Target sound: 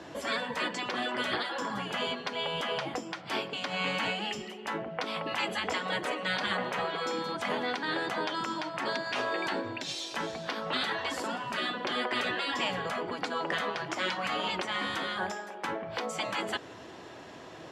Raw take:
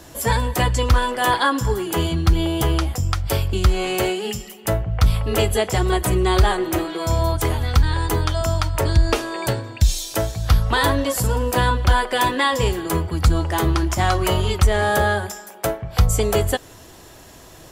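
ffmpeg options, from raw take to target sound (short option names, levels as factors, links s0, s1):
-af "afftfilt=real='re*lt(hypot(re,im),0.224)':imag='im*lt(hypot(re,im),0.224)':win_size=1024:overlap=0.75,alimiter=limit=0.15:level=0:latency=1:release=78,highpass=180,lowpass=3300"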